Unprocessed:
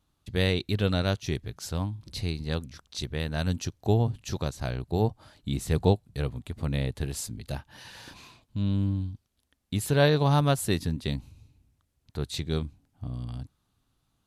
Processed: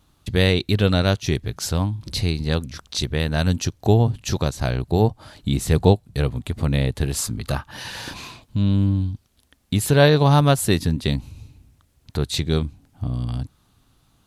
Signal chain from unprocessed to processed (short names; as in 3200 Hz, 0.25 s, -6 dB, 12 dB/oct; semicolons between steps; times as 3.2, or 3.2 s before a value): 7.18–7.71 bell 1200 Hz +12 dB 0.52 oct; in parallel at +2 dB: compressor, threshold -39 dBFS, peak gain reduction 21.5 dB; on the sum: gain +6 dB